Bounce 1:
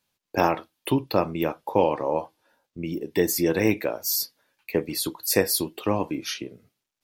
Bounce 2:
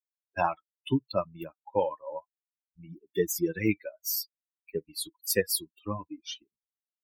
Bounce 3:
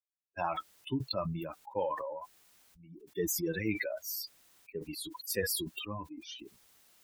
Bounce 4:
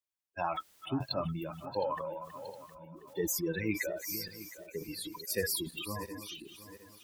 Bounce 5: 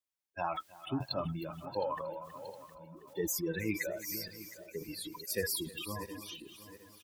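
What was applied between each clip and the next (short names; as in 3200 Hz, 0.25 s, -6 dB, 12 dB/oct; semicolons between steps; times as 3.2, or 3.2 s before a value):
per-bin expansion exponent 3
sustainer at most 28 dB/s; gain -8 dB
regenerating reverse delay 0.357 s, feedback 57%, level -12 dB
feedback echo 0.316 s, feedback 26%, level -20.5 dB; gain -1.5 dB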